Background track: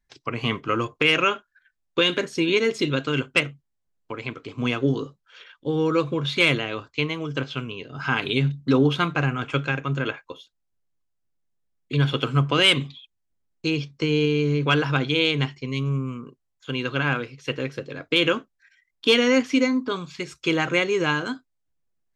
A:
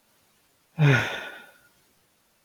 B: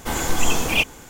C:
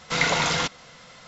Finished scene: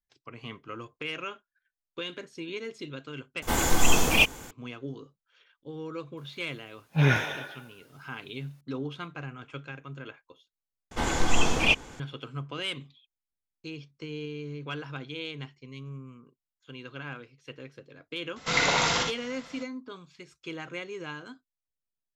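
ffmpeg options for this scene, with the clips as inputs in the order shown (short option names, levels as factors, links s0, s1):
-filter_complex "[2:a]asplit=2[s0][s1];[0:a]volume=0.158[s2];[1:a]highpass=41[s3];[s1]lowpass=5800[s4];[3:a]aecho=1:1:58|76:0.501|0.447[s5];[s2]asplit=3[s6][s7][s8];[s6]atrim=end=3.424[s9];[s0]atrim=end=1.09,asetpts=PTS-STARTPTS,volume=0.891[s10];[s7]atrim=start=4.506:end=10.914[s11];[s4]atrim=end=1.09,asetpts=PTS-STARTPTS,volume=0.75[s12];[s8]atrim=start=11.996[s13];[s3]atrim=end=2.44,asetpts=PTS-STARTPTS,volume=0.75,afade=t=in:d=0.004:c=hsin,afade=t=out:st=2.436:d=0.004:c=hsin,adelay=6170[s14];[s5]atrim=end=1.27,asetpts=PTS-STARTPTS,volume=0.708,afade=t=in:d=0.004:c=hsin,afade=t=out:st=1.266:d=0.004:c=hsin,adelay=18360[s15];[s9][s10]acrossfade=d=0.004:c1=hsin:c2=hsin[s16];[s16][s11]acrossfade=d=0.004:c1=hsin:c2=hsin[s17];[s17][s12]acrossfade=d=0.004:c1=hsin:c2=hsin[s18];[s18][s13]acrossfade=d=0.004:c1=hsin:c2=hsin[s19];[s19][s14][s15]amix=inputs=3:normalize=0"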